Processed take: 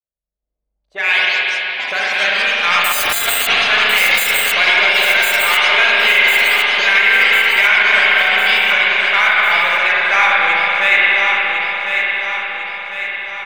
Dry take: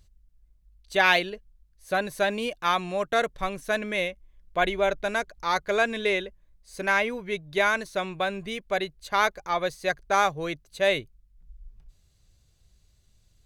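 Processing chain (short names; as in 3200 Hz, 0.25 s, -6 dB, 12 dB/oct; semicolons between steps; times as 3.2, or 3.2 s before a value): opening faded in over 3.01 s; auto-wah 570–2300 Hz, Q 2.8, up, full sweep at -29.5 dBFS; in parallel at -8 dB: soft clip -34.5 dBFS, distortion -6 dB; on the sum: echoes that change speed 0.357 s, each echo +5 st, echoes 3, each echo -6 dB; 2.84–3.47 careless resampling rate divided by 8×, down none, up zero stuff; on a send: feedback echo 1.051 s, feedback 51%, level -7 dB; on the sum: spring tank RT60 3.9 s, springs 40/52 ms, chirp 45 ms, DRR -5.5 dB; maximiser +16 dB; gain -1 dB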